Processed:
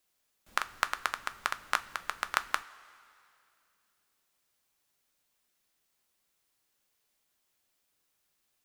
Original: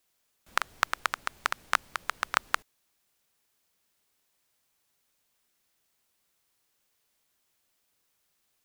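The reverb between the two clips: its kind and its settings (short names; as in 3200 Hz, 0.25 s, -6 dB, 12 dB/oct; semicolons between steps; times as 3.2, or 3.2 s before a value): two-slope reverb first 0.26 s, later 2.5 s, from -16 dB, DRR 10.5 dB; gain -3 dB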